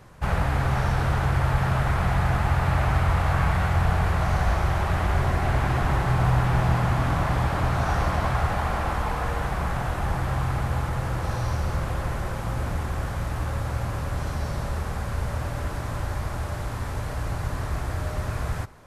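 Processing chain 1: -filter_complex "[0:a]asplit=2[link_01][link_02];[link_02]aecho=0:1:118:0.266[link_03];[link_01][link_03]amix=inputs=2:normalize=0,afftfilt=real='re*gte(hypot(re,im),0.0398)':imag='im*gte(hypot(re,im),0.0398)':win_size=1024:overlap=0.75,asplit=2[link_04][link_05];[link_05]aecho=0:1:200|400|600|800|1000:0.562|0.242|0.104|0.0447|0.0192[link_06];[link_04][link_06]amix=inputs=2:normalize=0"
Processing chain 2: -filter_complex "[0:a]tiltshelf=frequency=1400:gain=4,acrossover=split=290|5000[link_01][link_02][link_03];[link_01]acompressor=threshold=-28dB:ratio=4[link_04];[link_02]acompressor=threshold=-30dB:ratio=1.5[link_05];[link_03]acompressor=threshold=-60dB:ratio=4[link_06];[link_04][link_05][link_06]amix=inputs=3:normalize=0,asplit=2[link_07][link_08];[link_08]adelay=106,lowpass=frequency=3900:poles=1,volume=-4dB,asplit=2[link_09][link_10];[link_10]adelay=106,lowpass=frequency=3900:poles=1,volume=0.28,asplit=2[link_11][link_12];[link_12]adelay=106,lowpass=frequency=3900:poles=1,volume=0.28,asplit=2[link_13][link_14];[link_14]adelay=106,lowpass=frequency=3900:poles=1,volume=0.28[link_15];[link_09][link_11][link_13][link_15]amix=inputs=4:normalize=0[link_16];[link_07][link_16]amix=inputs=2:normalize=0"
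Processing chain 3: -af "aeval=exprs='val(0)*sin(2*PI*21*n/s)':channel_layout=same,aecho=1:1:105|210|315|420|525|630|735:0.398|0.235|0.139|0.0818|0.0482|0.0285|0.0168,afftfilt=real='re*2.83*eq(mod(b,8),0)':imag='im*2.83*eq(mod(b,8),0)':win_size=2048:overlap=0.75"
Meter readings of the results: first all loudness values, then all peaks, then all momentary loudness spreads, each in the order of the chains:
−24.5, −27.0, −33.5 LKFS; −6.5, −12.0, −16.5 dBFS; 9, 4, 8 LU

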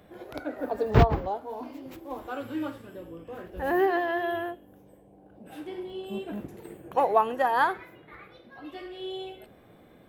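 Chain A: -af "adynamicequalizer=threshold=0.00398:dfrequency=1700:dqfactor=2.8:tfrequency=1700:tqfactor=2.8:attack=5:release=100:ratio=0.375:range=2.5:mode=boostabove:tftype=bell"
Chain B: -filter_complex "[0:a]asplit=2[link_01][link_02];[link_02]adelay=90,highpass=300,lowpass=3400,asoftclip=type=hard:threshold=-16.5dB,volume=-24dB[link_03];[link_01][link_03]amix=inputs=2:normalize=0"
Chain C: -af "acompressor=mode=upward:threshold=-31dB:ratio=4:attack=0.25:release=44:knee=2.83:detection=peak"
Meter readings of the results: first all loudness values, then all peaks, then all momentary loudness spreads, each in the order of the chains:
−28.0, −28.5, −29.5 LKFS; −6.5, −6.5, −6.5 dBFS; 21, 19, 17 LU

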